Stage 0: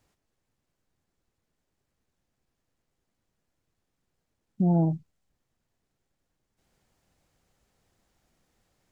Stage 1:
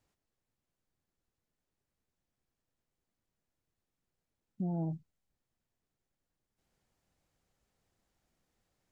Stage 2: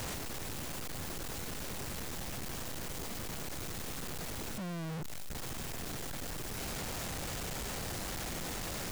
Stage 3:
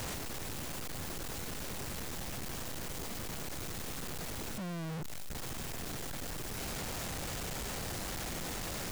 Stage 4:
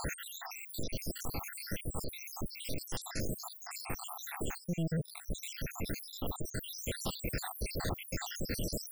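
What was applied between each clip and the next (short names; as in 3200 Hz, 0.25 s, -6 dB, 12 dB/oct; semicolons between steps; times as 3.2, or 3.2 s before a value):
limiter -20 dBFS, peak gain reduction 5.5 dB; gain -8 dB
infinite clipping; gain +9.5 dB
nothing audible
random spectral dropouts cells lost 84%; gain +7.5 dB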